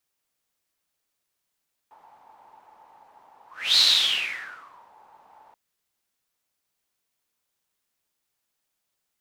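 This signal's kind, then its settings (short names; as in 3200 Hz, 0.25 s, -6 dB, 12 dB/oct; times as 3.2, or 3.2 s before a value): whoosh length 3.63 s, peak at 1.87, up 0.33 s, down 1.20 s, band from 870 Hz, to 4100 Hz, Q 9.6, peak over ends 36 dB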